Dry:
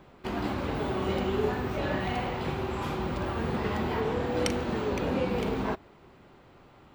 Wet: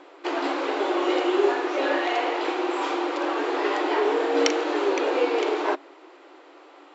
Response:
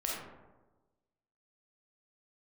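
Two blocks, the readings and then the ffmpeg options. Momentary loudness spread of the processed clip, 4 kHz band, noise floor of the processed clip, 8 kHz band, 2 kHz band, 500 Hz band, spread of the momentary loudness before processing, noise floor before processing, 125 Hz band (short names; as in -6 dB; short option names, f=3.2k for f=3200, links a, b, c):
4 LU, +8.0 dB, -50 dBFS, +6.5 dB, +8.0 dB, +7.5 dB, 4 LU, -56 dBFS, under -40 dB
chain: -af "afreqshift=-23,afftfilt=real='re*between(b*sr/4096,270,7700)':imag='im*between(b*sr/4096,270,7700)':win_size=4096:overlap=0.75,volume=8dB"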